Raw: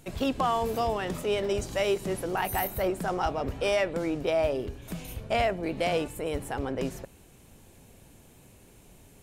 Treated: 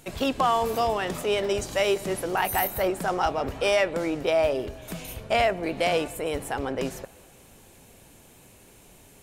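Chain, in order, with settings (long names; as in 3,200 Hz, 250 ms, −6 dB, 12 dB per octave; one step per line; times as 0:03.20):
low-shelf EQ 320 Hz −7 dB
delay with a band-pass on its return 193 ms, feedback 56%, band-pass 1,000 Hz, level −21 dB
level +5 dB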